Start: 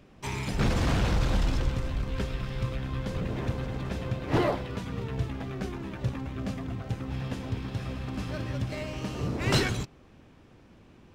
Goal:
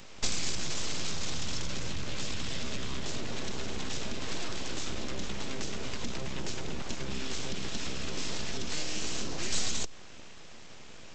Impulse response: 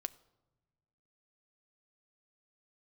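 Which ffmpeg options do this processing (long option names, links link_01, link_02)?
-filter_complex "[0:a]alimiter=level_in=1dB:limit=-24dB:level=0:latency=1:release=15,volume=-1dB,acompressor=threshold=-35dB:ratio=6,crystalizer=i=7.5:c=0,aresample=16000,aeval=exprs='abs(val(0))':channel_layout=same,aresample=44100,acrossover=split=470|3000[link_01][link_02][link_03];[link_02]acompressor=threshold=-48dB:ratio=6[link_04];[link_01][link_04][link_03]amix=inputs=3:normalize=0,asplit=2[link_05][link_06];[1:a]atrim=start_sample=2205[link_07];[link_06][link_07]afir=irnorm=-1:irlink=0,volume=-0.5dB[link_08];[link_05][link_08]amix=inputs=2:normalize=0"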